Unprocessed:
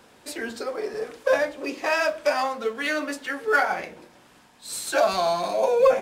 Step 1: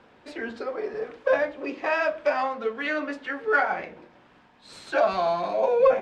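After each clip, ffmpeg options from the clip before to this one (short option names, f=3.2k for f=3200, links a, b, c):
-af "lowpass=2.8k,volume=-1dB"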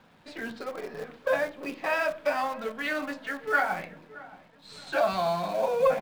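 -filter_complex "[0:a]equalizer=f=160:t=o:w=0.67:g=9,equalizer=f=400:t=o:w=0.67:g=-6,equalizer=f=4k:t=o:w=0.67:g=4,asplit=2[a][b];[b]acrusher=bits=6:dc=4:mix=0:aa=0.000001,volume=-9dB[c];[a][c]amix=inputs=2:normalize=0,asplit=2[d][e];[e]adelay=623,lowpass=f=1.4k:p=1,volume=-18dB,asplit=2[f][g];[g]adelay=623,lowpass=f=1.4k:p=1,volume=0.47,asplit=2[h][i];[i]adelay=623,lowpass=f=1.4k:p=1,volume=0.47,asplit=2[j][k];[k]adelay=623,lowpass=f=1.4k:p=1,volume=0.47[l];[d][f][h][j][l]amix=inputs=5:normalize=0,volume=-5dB"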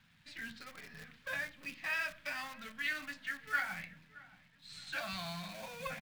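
-af "firequalizer=gain_entry='entry(130,0);entry(390,-23);entry(1800,0)':delay=0.05:min_phase=1,volume=-3.5dB"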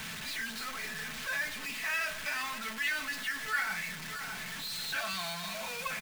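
-filter_complex "[0:a]aeval=exprs='val(0)+0.5*0.0188*sgn(val(0))':c=same,aecho=1:1:4.6:0.42,acrossover=split=750|2700[a][b][c];[a]alimiter=level_in=19dB:limit=-24dB:level=0:latency=1:release=486,volume=-19dB[d];[d][b][c]amix=inputs=3:normalize=0"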